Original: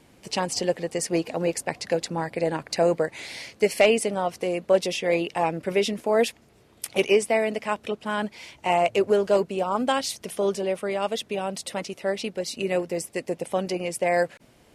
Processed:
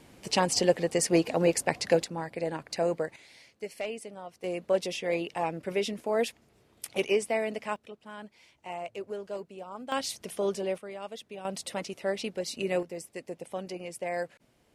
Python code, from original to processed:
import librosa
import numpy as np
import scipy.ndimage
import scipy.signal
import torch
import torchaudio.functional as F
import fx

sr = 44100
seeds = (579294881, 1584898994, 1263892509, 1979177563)

y = fx.gain(x, sr, db=fx.steps((0.0, 1.0), (2.04, -7.0), (3.16, -17.0), (4.44, -6.5), (7.76, -16.5), (9.92, -5.0), (10.78, -13.5), (11.45, -4.0), (12.83, -10.5)))